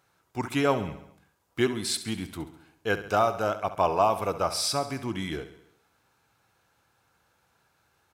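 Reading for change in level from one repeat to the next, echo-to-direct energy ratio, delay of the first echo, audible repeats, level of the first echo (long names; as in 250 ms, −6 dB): −5.0 dB, −11.5 dB, 68 ms, 5, −13.0 dB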